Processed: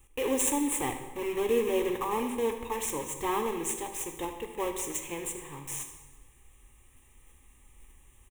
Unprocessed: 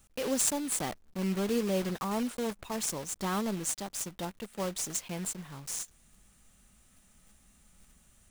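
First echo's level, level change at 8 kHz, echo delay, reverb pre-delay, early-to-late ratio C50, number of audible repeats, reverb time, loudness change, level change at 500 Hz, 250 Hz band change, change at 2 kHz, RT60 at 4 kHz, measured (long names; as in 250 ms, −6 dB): −15.0 dB, −0.5 dB, 77 ms, 11 ms, 7.5 dB, 1, 1.3 s, +1.5 dB, +5.0 dB, −0.5 dB, +3.0 dB, 1.0 s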